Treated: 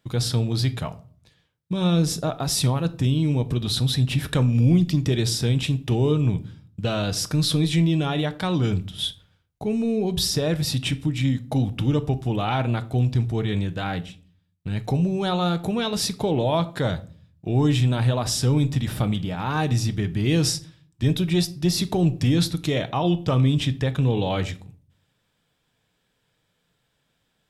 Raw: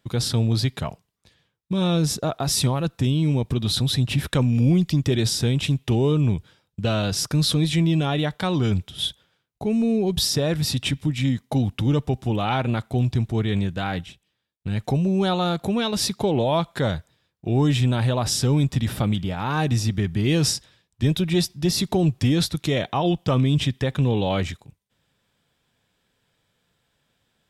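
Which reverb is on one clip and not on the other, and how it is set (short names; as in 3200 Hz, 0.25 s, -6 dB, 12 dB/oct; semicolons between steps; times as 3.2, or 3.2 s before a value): shoebox room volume 390 m³, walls furnished, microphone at 0.52 m; gain -1.5 dB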